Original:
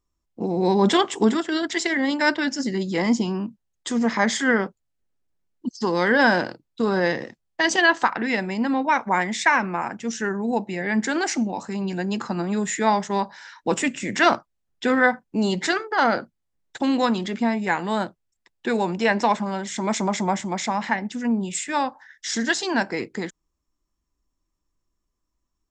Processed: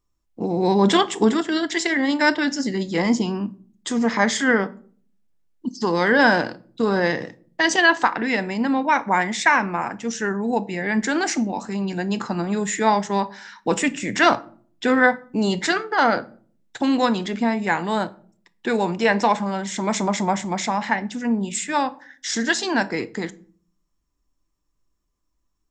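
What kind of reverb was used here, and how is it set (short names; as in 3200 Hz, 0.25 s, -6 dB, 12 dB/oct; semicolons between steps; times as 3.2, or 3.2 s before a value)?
shoebox room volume 440 m³, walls furnished, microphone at 0.4 m; gain +1.5 dB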